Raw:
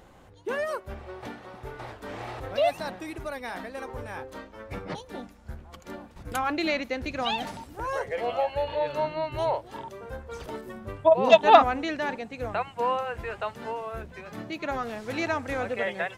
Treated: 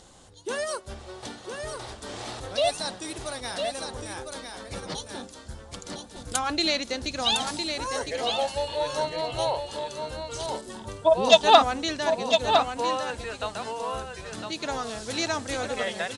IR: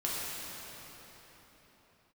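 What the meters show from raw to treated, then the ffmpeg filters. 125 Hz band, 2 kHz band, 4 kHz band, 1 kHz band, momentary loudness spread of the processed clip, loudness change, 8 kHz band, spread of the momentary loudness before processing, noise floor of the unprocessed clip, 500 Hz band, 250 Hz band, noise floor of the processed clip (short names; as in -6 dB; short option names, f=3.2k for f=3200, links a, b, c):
0.0 dB, 0.0 dB, +10.0 dB, 0.0 dB, 16 LU, +1.0 dB, +15.0 dB, 16 LU, -52 dBFS, 0.0 dB, 0.0 dB, -46 dBFS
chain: -af "aexciter=amount=3.6:drive=7.8:freq=3.3k,aresample=22050,aresample=44100,aecho=1:1:1007:0.501,volume=-1dB"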